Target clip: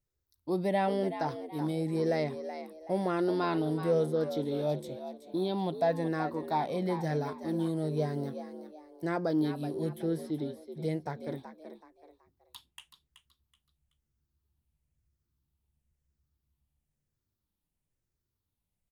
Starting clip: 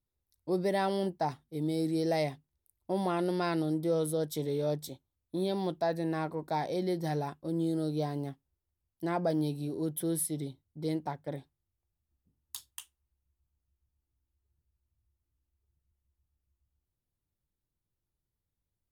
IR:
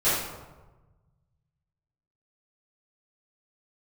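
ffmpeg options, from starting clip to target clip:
-filter_complex "[0:a]afftfilt=real='re*pow(10,7/40*sin(2*PI*(0.53*log(max(b,1)*sr/1024/100)/log(2)-(-1)*(pts-256)/sr)))':imag='im*pow(10,7/40*sin(2*PI*(0.53*log(max(b,1)*sr/1024/100)/log(2)-(-1)*(pts-256)/sr)))':win_size=1024:overlap=0.75,acrossover=split=4000[a][b];[b]acompressor=threshold=-56dB:ratio=12[c];[a][c]amix=inputs=2:normalize=0,asplit=4[d][e][f][g];[e]adelay=377,afreqshift=76,volume=-10.5dB[h];[f]adelay=754,afreqshift=152,volume=-20.7dB[i];[g]adelay=1131,afreqshift=228,volume=-30.8dB[j];[d][h][i][j]amix=inputs=4:normalize=0"

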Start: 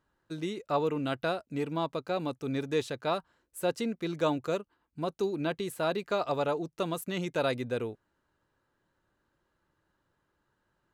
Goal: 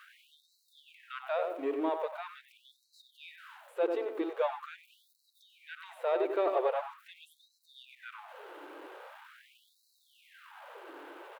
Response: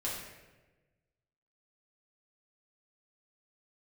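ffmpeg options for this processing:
-filter_complex "[0:a]aeval=exprs='val(0)+0.5*0.00944*sgn(val(0))':c=same,acrossover=split=3900[a][b];[b]acompressor=threshold=-56dB:ratio=4:attack=1:release=60[c];[a][c]amix=inputs=2:normalize=0,equalizer=f=2.4k:w=0.5:g=-11,asplit=2[d][e];[e]volume=34dB,asoftclip=hard,volume=-34dB,volume=-5dB[f];[d][f]amix=inputs=2:normalize=0,highshelf=f=4.2k:t=q:w=1.5:g=-11,asplit=2[g][h];[h]adelay=89,lowpass=f=2k:p=1,volume=-5dB,asplit=2[i][j];[j]adelay=89,lowpass=f=2k:p=1,volume=0.38,asplit=2[k][l];[l]adelay=89,lowpass=f=2k:p=1,volume=0.38,asplit=2[m][n];[n]adelay=89,lowpass=f=2k:p=1,volume=0.38,asplit=2[o][p];[p]adelay=89,lowpass=f=2k:p=1,volume=0.38[q];[g][i][k][m][o][q]amix=inputs=6:normalize=0,asetrate=42336,aresample=44100,afftfilt=real='re*gte(b*sr/1024,270*pow(3900/270,0.5+0.5*sin(2*PI*0.43*pts/sr)))':imag='im*gte(b*sr/1024,270*pow(3900/270,0.5+0.5*sin(2*PI*0.43*pts/sr)))':win_size=1024:overlap=0.75"

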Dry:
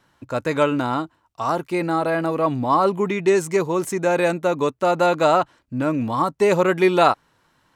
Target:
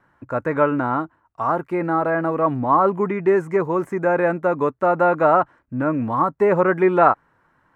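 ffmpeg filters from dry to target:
-filter_complex "[0:a]highshelf=f=2.5k:t=q:w=1.5:g=-13.5,acrossover=split=2600[a][b];[b]acompressor=threshold=-49dB:ratio=4:attack=1:release=60[c];[a][c]amix=inputs=2:normalize=0"

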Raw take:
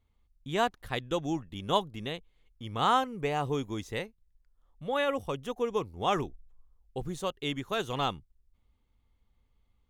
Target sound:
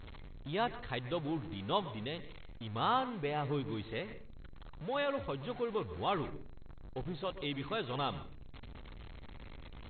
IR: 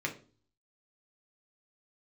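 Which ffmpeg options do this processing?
-filter_complex "[0:a]aeval=exprs='val(0)+0.5*0.0168*sgn(val(0))':c=same,asplit=2[a][b];[1:a]atrim=start_sample=2205,adelay=121[c];[b][c]afir=irnorm=-1:irlink=0,volume=-18dB[d];[a][d]amix=inputs=2:normalize=0,volume=-7dB" -ar 16000 -c:a mp2 -b:a 32k

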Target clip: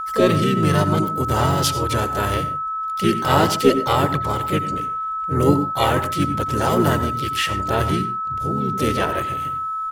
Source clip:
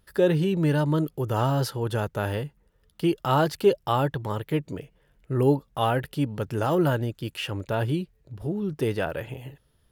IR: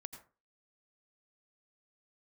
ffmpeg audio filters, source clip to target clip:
-filter_complex "[0:a]equalizer=f=7.3k:w=0.38:g=11,aeval=exprs='0.422*(cos(1*acos(clip(val(0)/0.422,-1,1)))-cos(1*PI/2))+0.00596*(cos(4*acos(clip(val(0)/0.422,-1,1)))-cos(4*PI/2))':c=same,asplit=3[a][b][c];[b]asetrate=29433,aresample=44100,atempo=1.49831,volume=-3dB[d];[c]asetrate=52444,aresample=44100,atempo=0.840896,volume=-6dB[e];[a][d][e]amix=inputs=3:normalize=0,aeval=exprs='val(0)+0.0501*sin(2*PI*1300*n/s)':c=same,asplit=2[f][g];[1:a]atrim=start_sample=2205,afade=t=out:st=0.23:d=0.01,atrim=end_sample=10584[h];[g][h]afir=irnorm=-1:irlink=0,volume=9.5dB[i];[f][i]amix=inputs=2:normalize=0,volume=-7dB"

